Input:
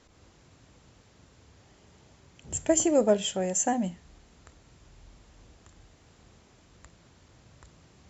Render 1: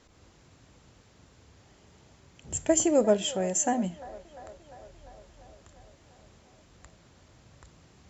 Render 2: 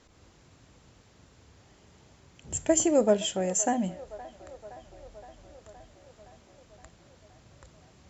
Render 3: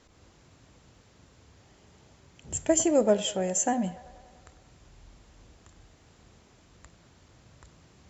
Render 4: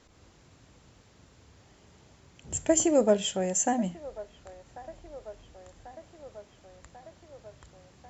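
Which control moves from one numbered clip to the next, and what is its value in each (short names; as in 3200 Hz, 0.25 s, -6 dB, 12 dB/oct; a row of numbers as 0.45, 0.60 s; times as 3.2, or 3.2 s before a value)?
band-limited delay, time: 348, 518, 97, 1092 ms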